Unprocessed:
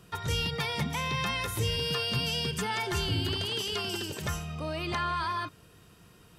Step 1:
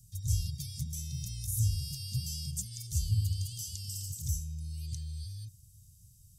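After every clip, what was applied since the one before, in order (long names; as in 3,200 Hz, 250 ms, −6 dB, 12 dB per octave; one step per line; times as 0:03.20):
elliptic band-stop filter 110–6,300 Hz, stop band 80 dB
level +4 dB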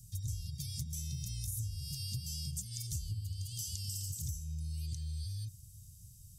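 downward compressor 12 to 1, threshold −39 dBFS, peak gain reduction 16 dB
level +3.5 dB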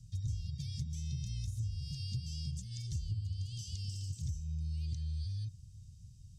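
high-frequency loss of the air 140 metres
level +2 dB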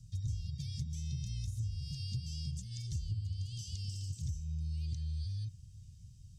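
delay with a band-pass on its return 534 ms, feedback 78%, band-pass 1,100 Hz, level −18 dB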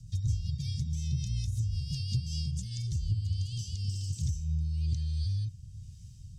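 rotating-speaker cabinet horn 5.5 Hz, later 1.1 Hz, at 0:02.02
level +8 dB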